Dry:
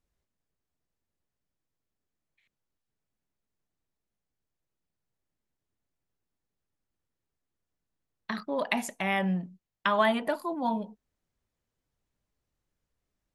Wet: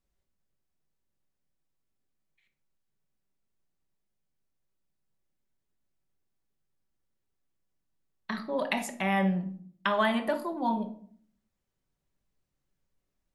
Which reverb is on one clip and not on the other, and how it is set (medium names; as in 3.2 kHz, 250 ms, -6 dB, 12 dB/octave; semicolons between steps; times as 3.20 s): simulated room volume 730 m³, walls furnished, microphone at 1.1 m; trim -1.5 dB